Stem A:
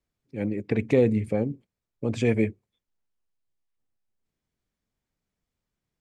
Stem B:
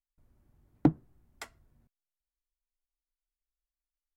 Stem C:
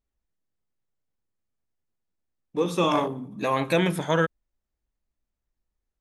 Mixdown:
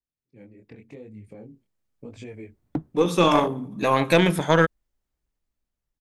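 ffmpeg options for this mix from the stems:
ffmpeg -i stem1.wav -i stem2.wav -i stem3.wav -filter_complex "[0:a]acompressor=threshold=-31dB:ratio=3,flanger=delay=19.5:depth=7.1:speed=0.89,volume=-11dB[link_01];[1:a]adelay=1900,volume=-11.5dB[link_02];[2:a]aeval=exprs='0.355*(cos(1*acos(clip(val(0)/0.355,-1,1)))-cos(1*PI/2))+0.0316*(cos(2*acos(clip(val(0)/0.355,-1,1)))-cos(2*PI/2))+0.0282*(cos(3*acos(clip(val(0)/0.355,-1,1)))-cos(3*PI/2))':channel_layout=same,adelay=400,volume=-0.5dB[link_03];[link_01][link_02][link_03]amix=inputs=3:normalize=0,dynaudnorm=framelen=330:gausssize=9:maxgain=9dB" out.wav

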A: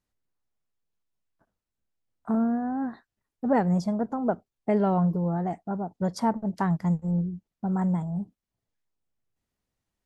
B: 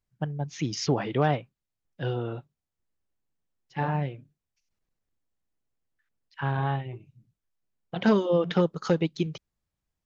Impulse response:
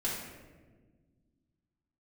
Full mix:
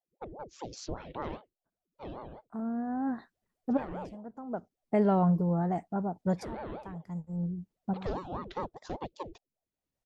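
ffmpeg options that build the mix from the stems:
-filter_complex "[0:a]adelay=250,volume=-1.5dB[link_01];[1:a]equalizer=frequency=1100:width=0.38:gain=-7,aeval=exprs='val(0)*sin(2*PI*460*n/s+460*0.65/5*sin(2*PI*5*n/s))':channel_layout=same,volume=-8dB,asplit=2[link_02][link_03];[link_03]apad=whole_len=454332[link_04];[link_01][link_04]sidechaincompress=threshold=-57dB:ratio=6:attack=16:release=633[link_05];[link_05][link_02]amix=inputs=2:normalize=0"

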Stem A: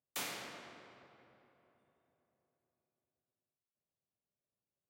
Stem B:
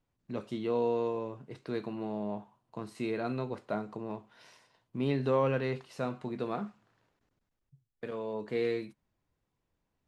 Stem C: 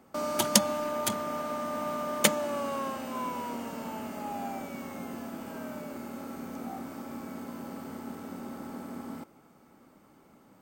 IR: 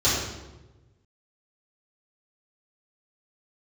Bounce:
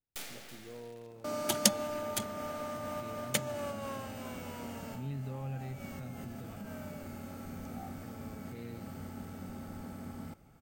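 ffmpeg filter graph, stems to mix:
-filter_complex "[0:a]acrusher=bits=6:dc=4:mix=0:aa=0.000001,volume=0.5dB,asplit=2[link_01][link_02];[link_02]volume=-13.5dB[link_03];[1:a]asubboost=boost=10:cutoff=140,volume=-16dB,asplit=2[link_04][link_05];[2:a]asubboost=boost=10:cutoff=94,adelay=1100,volume=-3dB[link_06];[link_05]apad=whole_len=516538[link_07];[link_06][link_07]sidechaincompress=threshold=-46dB:ratio=5:attack=7.2:release=113[link_08];[link_03]aecho=0:1:327:1[link_09];[link_01][link_04][link_08][link_09]amix=inputs=4:normalize=0,equalizer=frequency=1100:width=2.3:gain=-3.5,bandreject=frequency=1000:width=7.9"

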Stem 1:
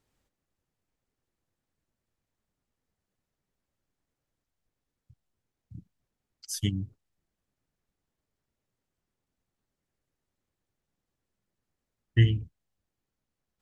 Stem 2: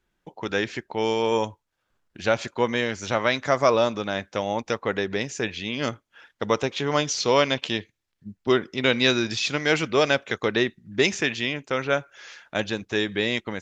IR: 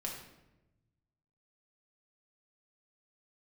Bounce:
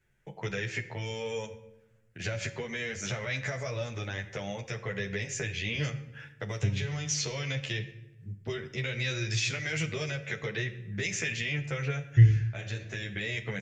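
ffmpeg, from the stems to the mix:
-filter_complex "[0:a]lowpass=1600,volume=-7dB,asplit=3[link_01][link_02][link_03];[link_02]volume=-10.5dB[link_04];[1:a]alimiter=limit=-16.5dB:level=0:latency=1:release=102,acrossover=split=150|3000[link_05][link_06][link_07];[link_06]acompressor=threshold=-34dB:ratio=6[link_08];[link_05][link_08][link_07]amix=inputs=3:normalize=0,asplit=2[link_09][link_10];[link_10]adelay=10.9,afreqshift=-0.68[link_11];[link_09][link_11]amix=inputs=2:normalize=1,volume=-0.5dB,asplit=2[link_12][link_13];[link_13]volume=-5.5dB[link_14];[link_03]apad=whole_len=600933[link_15];[link_12][link_15]sidechaincompress=threshold=-38dB:ratio=8:attack=16:release=887[link_16];[2:a]atrim=start_sample=2205[link_17];[link_04][link_14]amix=inputs=2:normalize=0[link_18];[link_18][link_17]afir=irnorm=-1:irlink=0[link_19];[link_01][link_16][link_19]amix=inputs=3:normalize=0,equalizer=frequency=125:width_type=o:width=1:gain=12,equalizer=frequency=250:width_type=o:width=1:gain=-10,equalizer=frequency=500:width_type=o:width=1:gain=4,equalizer=frequency=1000:width_type=o:width=1:gain=-8,equalizer=frequency=2000:width_type=o:width=1:gain=9,equalizer=frequency=4000:width_type=o:width=1:gain=-7,equalizer=frequency=8000:width_type=o:width=1:gain=4"

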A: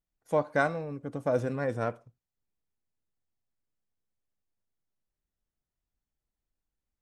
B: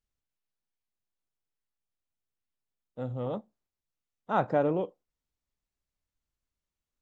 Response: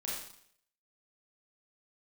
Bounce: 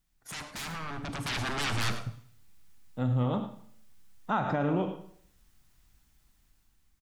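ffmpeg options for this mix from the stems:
-filter_complex "[0:a]acompressor=threshold=-37dB:ratio=3,aeval=exprs='0.0282*sin(PI/2*4.47*val(0)/0.0282)':channel_layout=same,volume=-5.5dB,asplit=3[link_01][link_02][link_03];[link_02]volume=-10.5dB[link_04];[link_03]volume=-13dB[link_05];[1:a]volume=-3.5dB,asplit=4[link_06][link_07][link_08][link_09];[link_07]volume=-7dB[link_10];[link_08]volume=-11dB[link_11];[link_09]apad=whole_len=309166[link_12];[link_01][link_12]sidechaincompress=threshold=-46dB:ratio=8:attack=16:release=206[link_13];[2:a]atrim=start_sample=2205[link_14];[link_04][link_10]amix=inputs=2:normalize=0[link_15];[link_15][link_14]afir=irnorm=-1:irlink=0[link_16];[link_05][link_11]amix=inputs=2:normalize=0,aecho=0:1:105:1[link_17];[link_13][link_06][link_16][link_17]amix=inputs=4:normalize=0,equalizer=frequency=500:width_type=o:width=1.1:gain=-11,dynaudnorm=framelen=530:gausssize=5:maxgain=10.5dB,alimiter=limit=-19.5dB:level=0:latency=1:release=112"

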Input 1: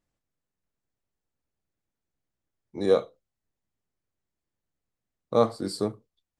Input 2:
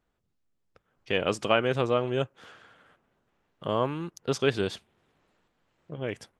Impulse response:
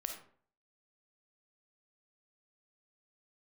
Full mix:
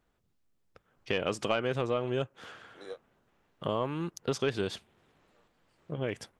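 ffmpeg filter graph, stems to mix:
-filter_complex "[0:a]highpass=580,acompressor=threshold=-23dB:ratio=6,volume=-10.5dB[link_01];[1:a]asoftclip=type=tanh:threshold=-11dB,volume=2.5dB,asplit=2[link_02][link_03];[link_03]apad=whole_len=281856[link_04];[link_01][link_04]sidechaingate=range=-33dB:threshold=-56dB:ratio=16:detection=peak[link_05];[link_05][link_02]amix=inputs=2:normalize=0,acompressor=threshold=-29dB:ratio=2.5"

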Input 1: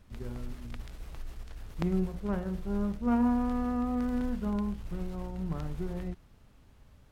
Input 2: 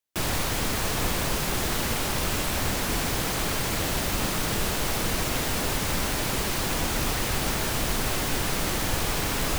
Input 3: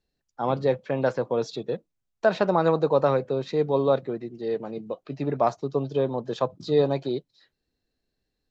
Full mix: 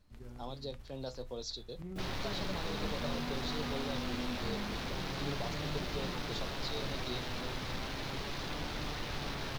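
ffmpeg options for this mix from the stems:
ffmpeg -i stem1.wav -i stem2.wav -i stem3.wav -filter_complex "[0:a]alimiter=level_in=2.5dB:limit=-24dB:level=0:latency=1:release=31,volume=-2.5dB,volume=-5dB[link_01];[1:a]afwtdn=0.02,equalizer=frequency=3800:width_type=o:width=0.47:gain=4.5,adelay=1800,volume=-7dB[link_02];[2:a]highshelf=frequency=2900:width_type=q:width=3:gain=13,alimiter=limit=-15.5dB:level=0:latency=1:release=434,volume=-11dB[link_03];[link_01][link_02][link_03]amix=inputs=3:normalize=0,flanger=delay=6.7:depth=1.3:regen=73:speed=0.34:shape=sinusoidal" out.wav

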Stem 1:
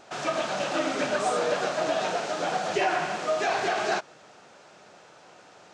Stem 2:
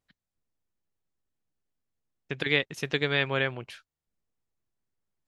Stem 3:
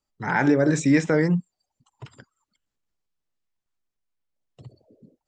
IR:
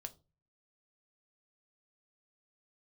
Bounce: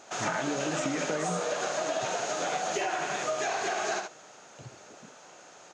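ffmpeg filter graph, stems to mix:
-filter_complex "[0:a]equalizer=frequency=6600:width_type=o:width=0.21:gain=13,volume=-0.5dB,asplit=2[link_01][link_02];[link_02]volume=-8dB[link_03];[1:a]aeval=exprs='if(lt(val(0),0),0.708*val(0),val(0))':channel_layout=same,volume=-12dB[link_04];[2:a]acompressor=threshold=-24dB:ratio=6,volume=1.5dB[link_05];[link_03]aecho=0:1:74:1[link_06];[link_01][link_04][link_05][link_06]amix=inputs=4:normalize=0,highpass=55,lowshelf=frequency=180:gain=-7,acompressor=threshold=-27dB:ratio=6"

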